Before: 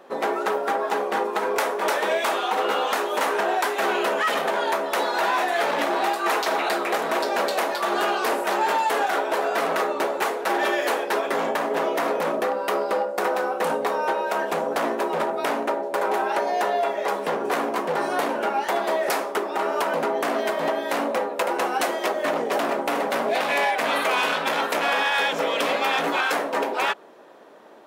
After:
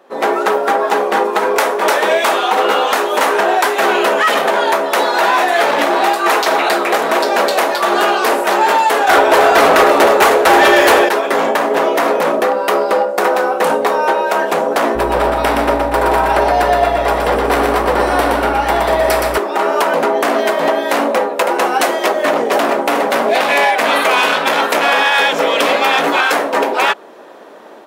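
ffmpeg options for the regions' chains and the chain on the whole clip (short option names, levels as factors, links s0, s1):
-filter_complex "[0:a]asettb=1/sr,asplit=3[s0][s1][s2];[s0]atrim=end=9.074[s3];[s1]atrim=start=9.07:end=11.09,asetpts=PTS-STARTPTS,afade=t=in:d=0.004:c=qsin,afade=t=out:st=2.016:d=0.004:c=qsin,aecho=1:1:311:0.376,atrim=end_sample=89082,aeval=exprs='0.266*sin(PI/2*1.58*val(0)/0.266)':c=same[s4];[s2]atrim=start=11.086[s5];[s3][s4]acrossfade=d=0.004:c1=hsin:c2=qsin[s6];[s6][s5]acrossfade=d=0.004:c1=qsin:c2=hsin,asettb=1/sr,asplit=3[s7][s8][s9];[s7]atrim=end=14.954[s10];[s8]atrim=start=14.95:end=19.38,asetpts=PTS-STARTPTS,afade=t=in:d=0.004:c=qsin,afade=t=out:st=4.426:d=0.004:c=qsin,bandreject=f=6600:w=7.9,aeval=exprs='val(0)+0.0224*(sin(2*PI*60*n/s)+sin(2*PI*2*60*n/s)/2+sin(2*PI*3*60*n/s)/3+sin(2*PI*4*60*n/s)/4+sin(2*PI*5*60*n/s)/5)':c=same,aecho=1:1:120|240|360|480|600|720|840:0.668|0.348|0.181|0.094|0.0489|0.0254|0.0132,atrim=end_sample=195363[s11];[s9]atrim=start=19.376[s12];[s10][s11]acrossfade=d=0.004:c1=hsin:c2=qsin[s13];[s13][s12]acrossfade=d=0.004:c1=qsin:c2=hsin,highpass=44,equalizer=f=140:t=o:w=0.58:g=-5.5,dynaudnorm=f=110:g=3:m=3.55"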